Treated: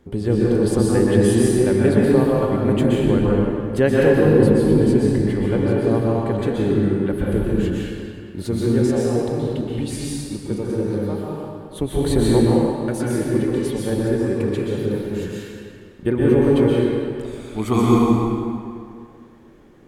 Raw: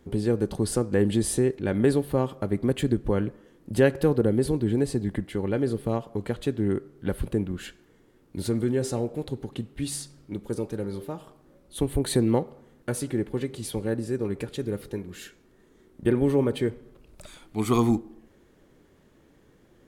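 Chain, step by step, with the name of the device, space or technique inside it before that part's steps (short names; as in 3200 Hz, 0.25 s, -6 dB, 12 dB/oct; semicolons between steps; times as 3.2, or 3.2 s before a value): swimming-pool hall (reverb RT60 2.3 s, pre-delay 0.117 s, DRR -5 dB; high shelf 4400 Hz -5.5 dB); gain +2 dB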